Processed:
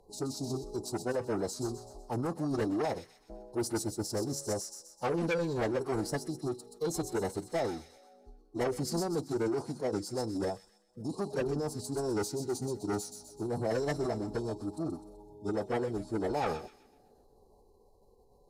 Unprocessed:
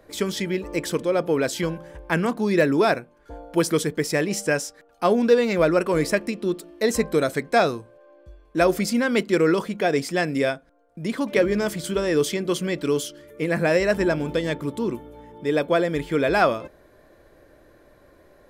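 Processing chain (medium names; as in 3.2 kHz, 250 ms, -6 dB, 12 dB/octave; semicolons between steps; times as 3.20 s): Chebyshev band-stop 1.2–4.1 kHz, order 4; saturation -19 dBFS, distortion -12 dB; on a send: feedback echo behind a high-pass 127 ms, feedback 42%, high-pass 2.8 kHz, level -5.5 dB; on the sum: formant-preserving pitch shift -6 st; trim -7 dB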